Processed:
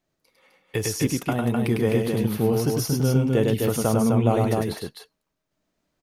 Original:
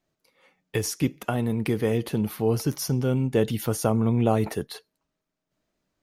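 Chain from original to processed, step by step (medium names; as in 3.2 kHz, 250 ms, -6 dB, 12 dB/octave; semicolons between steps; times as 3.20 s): loudspeakers at several distances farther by 35 m -3 dB, 88 m -4 dB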